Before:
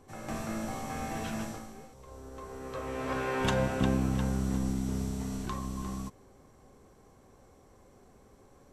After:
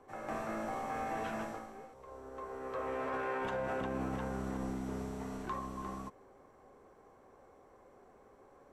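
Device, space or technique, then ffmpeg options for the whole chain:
DJ mixer with the lows and highs turned down: -filter_complex "[0:a]acrossover=split=330 2200:gain=0.224 1 0.2[link_01][link_02][link_03];[link_01][link_02][link_03]amix=inputs=3:normalize=0,alimiter=level_in=7dB:limit=-24dB:level=0:latency=1:release=16,volume=-7dB,volume=2dB"

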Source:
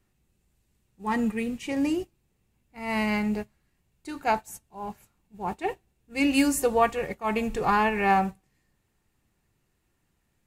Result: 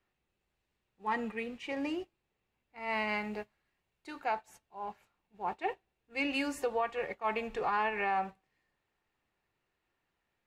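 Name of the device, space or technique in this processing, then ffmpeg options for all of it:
DJ mixer with the lows and highs turned down: -filter_complex "[0:a]asettb=1/sr,asplit=3[link_01][link_02][link_03];[link_01]atrim=end=3.094[link_04];[link_02]atrim=start=3.09:end=4.25,asetpts=PTS-STARTPTS,afade=type=in:duration=0.004:curve=qsin,afade=type=out:start_time=1.156:duration=0.004:curve=qsin,highshelf=frequency=8200:gain=7[link_05];[link_03]atrim=start=4.246[link_06];[link_04][link_05]acrossfade=duration=0.004:curve1=hsin:curve2=qsin[link_07];[link_07][link_06]acrossfade=duration=0.004:curve1=qsin:curve2=hsin,acrossover=split=390 4500:gain=0.224 1 0.126[link_08][link_09][link_10];[link_08][link_09][link_10]amix=inputs=3:normalize=0,alimiter=limit=-19.5dB:level=0:latency=1:release=182,volume=-3dB"

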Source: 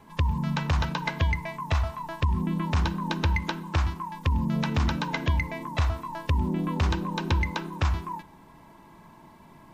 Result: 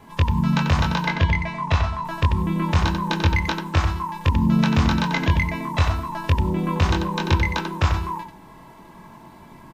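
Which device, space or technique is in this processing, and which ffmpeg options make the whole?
slapback doubling: -filter_complex "[0:a]asettb=1/sr,asplit=3[link_01][link_02][link_03];[link_01]atrim=end=1.054[link_04];[link_02]atrim=start=1.05:end=2.05,asetpts=PTS-STARTPTS,afade=type=in:duration=0.004:curve=qsin,afade=type=out:start_time=0.996:duration=0.004:curve=qsin,lowpass=6100[link_05];[link_03]atrim=start=2.046[link_06];[link_04][link_05]acrossfade=duration=0.004:curve1=hsin:curve2=qsin[link_07];[link_07][link_06]acrossfade=duration=0.004:curve1=qsin:curve2=hsin,asplit=3[link_08][link_09][link_10];[link_09]adelay=22,volume=-3dB[link_11];[link_10]adelay=91,volume=-7dB[link_12];[link_08][link_11][link_12]amix=inputs=3:normalize=0,volume=4.5dB"

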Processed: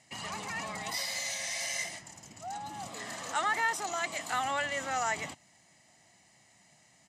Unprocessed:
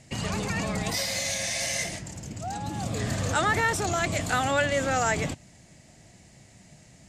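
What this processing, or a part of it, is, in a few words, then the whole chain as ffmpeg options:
filter by subtraction: -filter_complex "[0:a]asettb=1/sr,asplit=3[link_01][link_02][link_03];[link_01]atrim=end=2.894[link_04];[link_02]atrim=start=2.89:end=4.31,asetpts=PTS-STARTPTS,afade=type=in:duration=0.004:curve=qsin,afade=type=out:start_time=1.416:duration=0.004:curve=qsin,highpass=200[link_05];[link_03]atrim=start=4.306[link_06];[link_04][link_05]acrossfade=duration=0.004:curve1=hsin:curve2=qsin[link_07];[link_07][link_06]acrossfade=duration=0.004:curve1=qsin:curve2=hsin,aecho=1:1:1:0.42,asplit=2[link_08][link_09];[link_09]lowpass=910,volume=-1[link_10];[link_08][link_10]amix=inputs=2:normalize=0,volume=-7dB"

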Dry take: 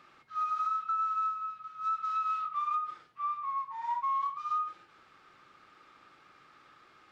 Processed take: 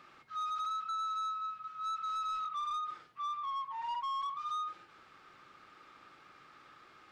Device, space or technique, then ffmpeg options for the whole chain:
saturation between pre-emphasis and de-emphasis: -af "highshelf=frequency=4700:gain=7,asoftclip=type=tanh:threshold=-34.5dB,highshelf=frequency=4700:gain=-7,volume=1dB"

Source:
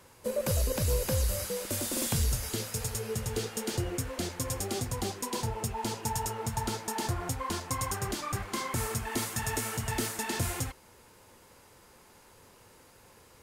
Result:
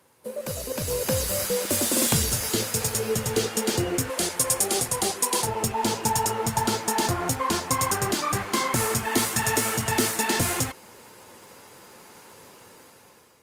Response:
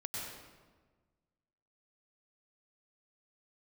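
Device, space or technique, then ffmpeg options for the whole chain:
video call: -filter_complex "[0:a]asettb=1/sr,asplit=3[link_01][link_02][link_03];[link_01]atrim=end=4.104[link_04];[link_02]atrim=start=4.1:end=5.49,asetpts=PTS-STARTPTS,afade=type=in:duration=0.004:curve=qsin,afade=type=out:start_time=1.386:duration=0.004:curve=qsin,equalizer=frequency=100:width_type=o:width=0.67:gain=-9,equalizer=frequency=250:width_type=o:width=0.67:gain=-9,equalizer=frequency=10000:width_type=o:width=0.67:gain=8[link_05];[link_03]atrim=start=5.486[link_06];[link_04][link_05]acrossfade=duration=0.004:curve1=hsin:curve2=qsin[link_07];[link_07][link_06]acrossfade=duration=0.004:curve1=qsin:curve2=hsin,highpass=140,dynaudnorm=framelen=400:gausssize=5:maxgain=12dB,volume=-2.5dB" -ar 48000 -c:a libopus -b:a 32k

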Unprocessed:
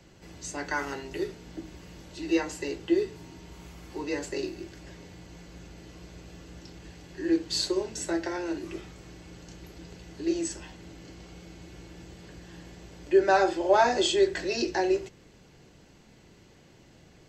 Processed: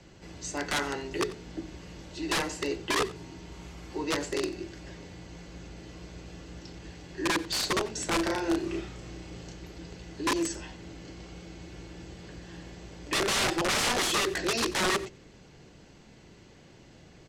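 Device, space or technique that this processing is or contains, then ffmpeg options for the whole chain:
overflowing digital effects unit: -filter_complex "[0:a]aeval=exprs='(mod(14.1*val(0)+1,2)-1)/14.1':channel_layout=same,lowpass=8500,asplit=3[link_01][link_02][link_03];[link_01]afade=type=out:start_time=8.18:duration=0.02[link_04];[link_02]asplit=2[link_05][link_06];[link_06]adelay=33,volume=-3dB[link_07];[link_05][link_07]amix=inputs=2:normalize=0,afade=type=in:start_time=8.18:duration=0.02,afade=type=out:start_time=9.5:duration=0.02[link_08];[link_03]afade=type=in:start_time=9.5:duration=0.02[link_09];[link_04][link_08][link_09]amix=inputs=3:normalize=0,aecho=1:1:90:0.119,volume=2dB"

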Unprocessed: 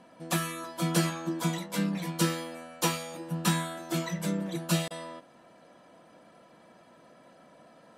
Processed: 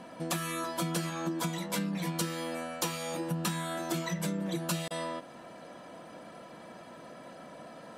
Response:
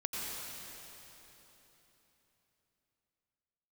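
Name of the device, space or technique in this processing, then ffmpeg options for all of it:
serial compression, peaks first: -af "acompressor=threshold=-35dB:ratio=5,acompressor=threshold=-43dB:ratio=1.5,volume=8dB"

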